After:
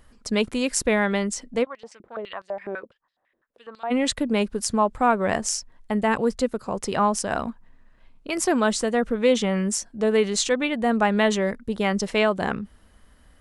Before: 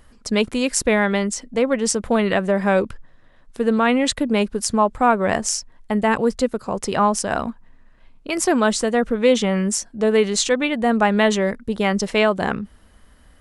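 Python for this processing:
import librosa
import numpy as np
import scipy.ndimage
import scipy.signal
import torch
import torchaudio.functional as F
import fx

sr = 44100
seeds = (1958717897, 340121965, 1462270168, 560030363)

y = fx.filter_held_bandpass(x, sr, hz=12.0, low_hz=360.0, high_hz=4600.0, at=(1.63, 3.9), fade=0.02)
y = y * 10.0 ** (-3.5 / 20.0)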